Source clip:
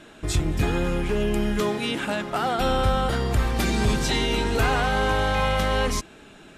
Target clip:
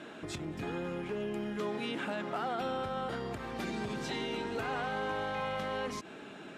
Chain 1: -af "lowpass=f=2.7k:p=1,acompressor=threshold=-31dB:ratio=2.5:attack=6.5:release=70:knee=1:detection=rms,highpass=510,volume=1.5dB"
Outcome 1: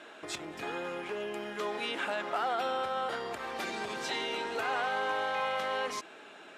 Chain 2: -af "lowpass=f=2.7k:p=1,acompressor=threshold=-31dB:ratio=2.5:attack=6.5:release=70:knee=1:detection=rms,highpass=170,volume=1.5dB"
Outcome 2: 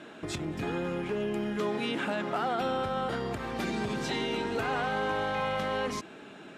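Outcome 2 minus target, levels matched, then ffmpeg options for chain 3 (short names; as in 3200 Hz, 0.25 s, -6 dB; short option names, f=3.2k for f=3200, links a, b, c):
compressor: peak gain reduction -5 dB
-af "lowpass=f=2.7k:p=1,acompressor=threshold=-39dB:ratio=2.5:attack=6.5:release=70:knee=1:detection=rms,highpass=170,volume=1.5dB"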